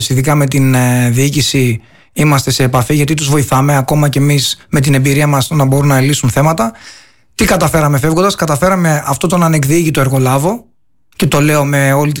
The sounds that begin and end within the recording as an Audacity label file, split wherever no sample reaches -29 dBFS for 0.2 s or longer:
2.160000	7.020000	sound
7.390000	10.610000	sound